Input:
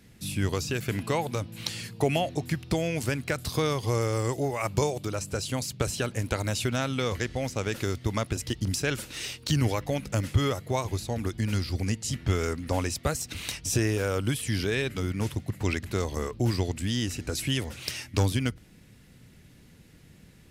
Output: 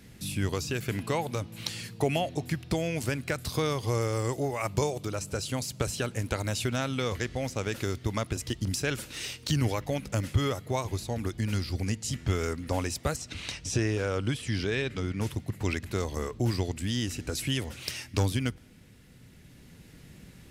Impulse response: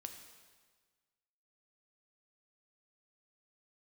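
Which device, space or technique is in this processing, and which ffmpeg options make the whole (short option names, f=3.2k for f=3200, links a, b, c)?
ducked reverb: -filter_complex "[0:a]asettb=1/sr,asplit=3[a][b][c];[a]atrim=end=13.164[d];[b]atrim=start=13.16:end=15.21,asetpts=PTS-STARTPTS,afade=t=in:d=0.004:c=qsin,afade=t=out:st=2.046:d=0.004:c=qsin,lowpass=6.4k[e];[c]atrim=start=15.206[f];[d][e]acrossfade=d=0.004:c1=hsin:c2=qsin[g];[g][f]acrossfade=d=0.004:c1=qsin:c2=hsin,asplit=3[h][i][j];[1:a]atrim=start_sample=2205[k];[i][k]afir=irnorm=-1:irlink=0[l];[j]apad=whole_len=904291[m];[l][m]sidechaincompress=threshold=-43dB:ratio=8:attack=6.6:release=964,volume=5dB[n];[h][n]amix=inputs=2:normalize=0,volume=-2.5dB"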